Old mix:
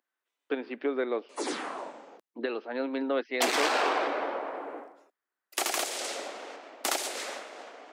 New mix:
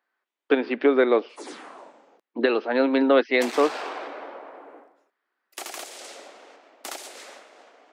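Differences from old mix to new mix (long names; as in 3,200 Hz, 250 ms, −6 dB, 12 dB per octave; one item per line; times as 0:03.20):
speech +11.0 dB
background −6.5 dB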